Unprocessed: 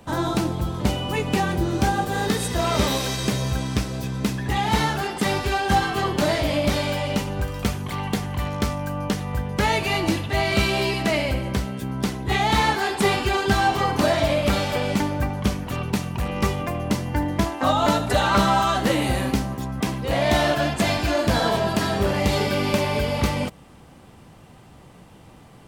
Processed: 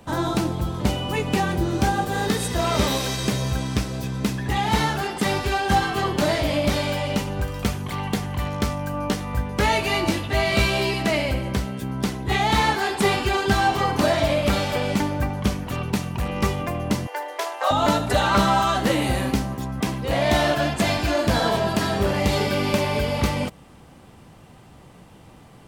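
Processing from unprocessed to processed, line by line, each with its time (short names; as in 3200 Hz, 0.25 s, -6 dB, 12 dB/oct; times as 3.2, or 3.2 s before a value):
8.92–10.78 doubler 17 ms -7 dB
17.07–17.71 steep high-pass 420 Hz 48 dB/oct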